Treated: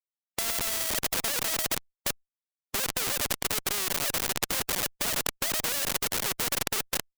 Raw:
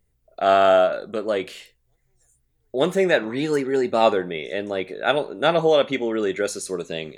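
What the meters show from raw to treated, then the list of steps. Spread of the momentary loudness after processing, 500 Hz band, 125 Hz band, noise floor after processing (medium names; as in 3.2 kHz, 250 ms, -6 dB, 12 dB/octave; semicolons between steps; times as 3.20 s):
4 LU, -19.5 dB, -7.5 dB, under -85 dBFS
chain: formants replaced by sine waves; de-esser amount 75%; hum notches 60/120/180/240/300 Hz; repeats whose band climbs or falls 383 ms, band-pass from 290 Hz, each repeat 1.4 oct, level -5.5 dB; in parallel at -3 dB: compression 8:1, threshold -24 dBFS, peak gain reduction 13.5 dB; on the sum: harmonic-percussive split harmonic -4 dB; on a send: two-band feedback delay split 420 Hz, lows 471 ms, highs 88 ms, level -6 dB; on the sum: transient shaper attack +6 dB, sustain -8 dB; distance through air 130 m; LPC vocoder at 8 kHz pitch kept; Schmitt trigger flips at -24.5 dBFS; spectrum-flattening compressor 4:1; trim +6.5 dB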